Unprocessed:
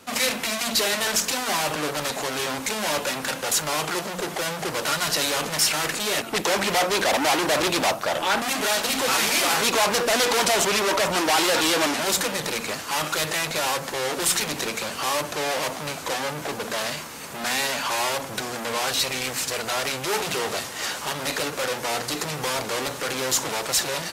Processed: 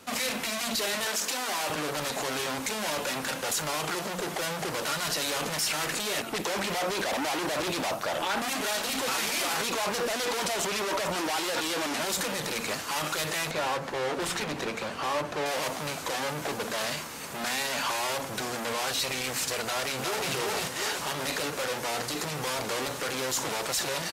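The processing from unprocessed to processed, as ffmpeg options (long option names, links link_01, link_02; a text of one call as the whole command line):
ffmpeg -i in.wav -filter_complex "[0:a]asettb=1/sr,asplit=3[link_01][link_02][link_03];[link_01]atrim=end=1.064[link_04];[link_02]atrim=start=1.06:end=1.7,asetpts=PTS-STARTPTS,afade=type=in:duration=0.004:curve=qsin,afade=type=out:start_time=0.636:duration=0.004:curve=qsin,highpass=270[link_05];[link_03]atrim=start=1.696[link_06];[link_04][link_05]acrossfade=duration=0.004:curve1=hsin:curve2=qsin[link_07];[link_07][link_06]acrossfade=duration=0.004:curve1=qsin:curve2=hsin,asettb=1/sr,asplit=3[link_08][link_09][link_10];[link_08]atrim=end=13.514[link_11];[link_09]atrim=start=13.51:end=15.46,asetpts=PTS-STARTPTS,afade=type=in:duration=0.004:curve=qsin,afade=type=out:start_time=1.946:duration=0.004:curve=qsin,lowpass=frequency=2000:poles=1[link_12];[link_10]atrim=start=15.456[link_13];[link_11][link_12]acrossfade=duration=0.004:curve1=hsin:curve2=qsin[link_14];[link_14][link_13]acrossfade=duration=0.004:curve1=qsin:curve2=hsin,asplit=2[link_15][link_16];[link_16]afade=type=in:start_time=19.62:duration=0.01,afade=type=out:start_time=20.31:duration=0.01,aecho=0:1:360|720|1080|1440|1800:0.794328|0.317731|0.127093|0.050837|0.0203348[link_17];[link_15][link_17]amix=inputs=2:normalize=0,alimiter=limit=-17.5dB:level=0:latency=1:release=24,volume=-2dB" out.wav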